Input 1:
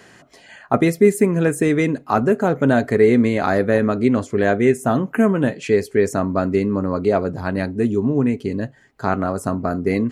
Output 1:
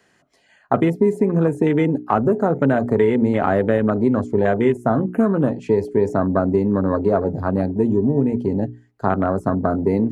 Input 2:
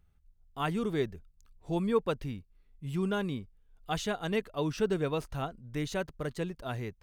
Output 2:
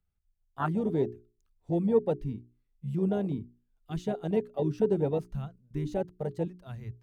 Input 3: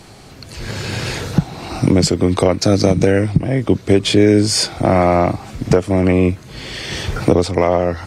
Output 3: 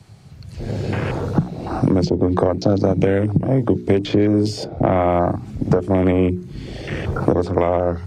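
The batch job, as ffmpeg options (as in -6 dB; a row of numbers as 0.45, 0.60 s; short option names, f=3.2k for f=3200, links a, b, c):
-filter_complex "[0:a]afwtdn=0.0501,bandreject=f=60:t=h:w=6,bandreject=f=120:t=h:w=6,bandreject=f=180:t=h:w=6,bandreject=f=240:t=h:w=6,bandreject=f=300:t=h:w=6,bandreject=f=360:t=h:w=6,bandreject=f=420:t=h:w=6,acrossover=split=100|1400|6300[a][b][c][d];[a]acompressor=threshold=-35dB:ratio=4[e];[b]acompressor=threshold=-18dB:ratio=4[f];[c]acompressor=threshold=-39dB:ratio=4[g];[d]acompressor=threshold=-59dB:ratio=4[h];[e][f][g][h]amix=inputs=4:normalize=0,volume=4dB"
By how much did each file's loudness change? -0.5, +2.5, -3.5 LU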